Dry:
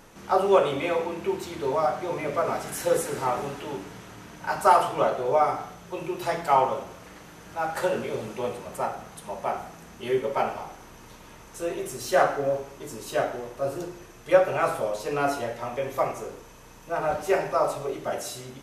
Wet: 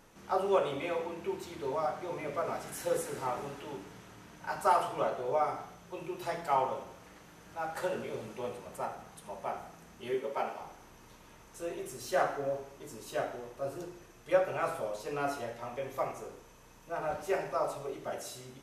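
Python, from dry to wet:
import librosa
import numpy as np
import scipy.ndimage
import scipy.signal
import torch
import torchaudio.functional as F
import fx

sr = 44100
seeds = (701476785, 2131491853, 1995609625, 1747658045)

p1 = fx.highpass(x, sr, hz=200.0, slope=12, at=(10.14, 10.61))
p2 = p1 + fx.echo_thinned(p1, sr, ms=79, feedback_pct=52, hz=420.0, wet_db=-17.0, dry=0)
y = p2 * 10.0 ** (-8.5 / 20.0)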